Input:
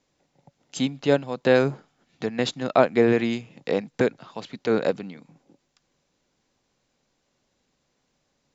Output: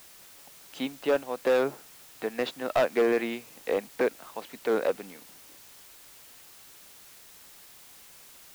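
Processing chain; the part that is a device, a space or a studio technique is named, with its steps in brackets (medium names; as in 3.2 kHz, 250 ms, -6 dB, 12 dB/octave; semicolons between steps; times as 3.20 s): aircraft radio (band-pass 370–2700 Hz; hard clipper -17 dBFS, distortion -11 dB; white noise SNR 20 dB); trim -1 dB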